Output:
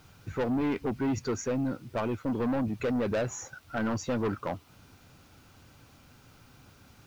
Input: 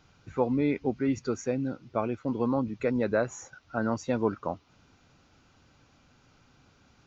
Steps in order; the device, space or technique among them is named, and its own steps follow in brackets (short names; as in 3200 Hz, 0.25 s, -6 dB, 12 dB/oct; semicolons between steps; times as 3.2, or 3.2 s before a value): open-reel tape (soft clip -29 dBFS, distortion -7 dB; bell 100 Hz +4 dB 0.82 oct; white noise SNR 35 dB); gain +4 dB